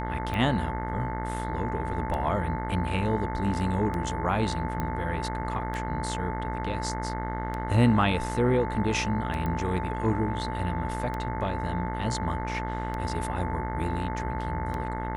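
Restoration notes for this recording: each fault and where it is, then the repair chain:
mains buzz 60 Hz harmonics 36 −33 dBFS
scratch tick 33 1/3 rpm −20 dBFS
whistle 880 Hz −34 dBFS
0:04.80: click −17 dBFS
0:09.46: click −20 dBFS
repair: click removal
notch filter 880 Hz, Q 30
hum removal 60 Hz, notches 36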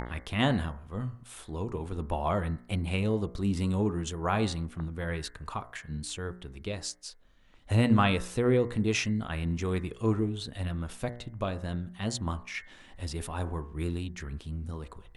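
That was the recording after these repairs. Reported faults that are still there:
0:04.80: click
0:09.46: click

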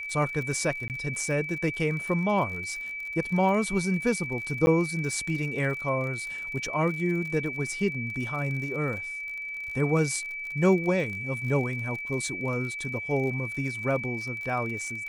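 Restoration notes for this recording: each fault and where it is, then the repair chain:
surface crackle 51 per second −35 dBFS
whistle 2,300 Hz −33 dBFS
0:00.88–0:00.90: drop-out 18 ms
0:04.66–0:04.67: drop-out 10 ms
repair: click removal
notch filter 2,300 Hz, Q 30
repair the gap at 0:00.88, 18 ms
repair the gap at 0:04.66, 10 ms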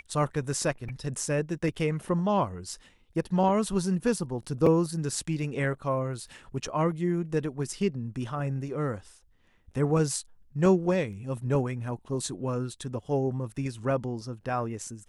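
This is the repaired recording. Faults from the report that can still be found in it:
none of them is left

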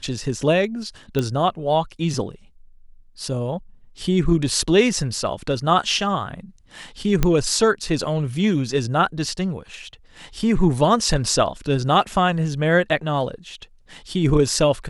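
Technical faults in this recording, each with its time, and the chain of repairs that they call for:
0:01.19: click −10 dBFS
0:07.23: click −5 dBFS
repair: click removal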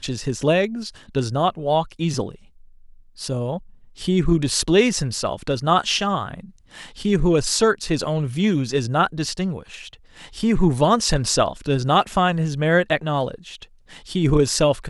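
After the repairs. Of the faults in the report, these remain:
none of them is left

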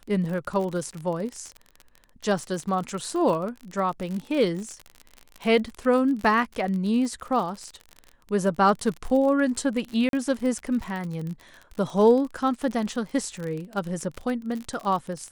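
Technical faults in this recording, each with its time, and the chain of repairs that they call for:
surface crackle 43 per second −30 dBFS
0:10.09–0:10.13: drop-out 42 ms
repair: click removal
repair the gap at 0:10.09, 42 ms

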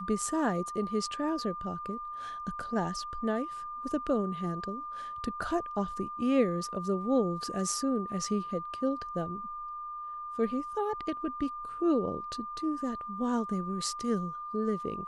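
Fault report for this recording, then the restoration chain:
whistle 1,200 Hz −37 dBFS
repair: notch filter 1,200 Hz, Q 30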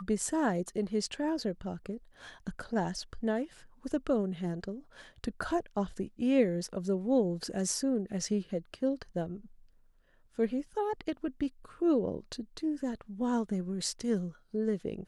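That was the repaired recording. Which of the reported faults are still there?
none of them is left

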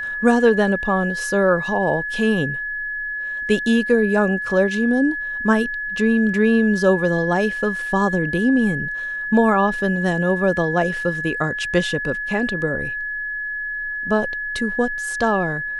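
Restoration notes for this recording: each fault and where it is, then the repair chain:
whistle 1,700 Hz −24 dBFS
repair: notch filter 1,700 Hz, Q 30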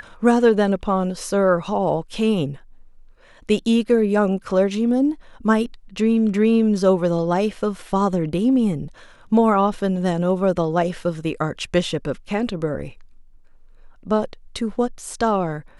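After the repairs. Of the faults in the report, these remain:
none of them is left

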